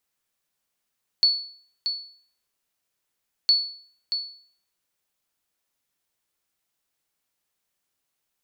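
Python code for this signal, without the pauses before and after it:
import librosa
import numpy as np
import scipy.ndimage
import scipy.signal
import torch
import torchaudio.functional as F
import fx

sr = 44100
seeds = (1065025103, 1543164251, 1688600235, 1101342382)

y = fx.sonar_ping(sr, hz=4430.0, decay_s=0.52, every_s=2.26, pings=2, echo_s=0.63, echo_db=-8.5, level_db=-11.5)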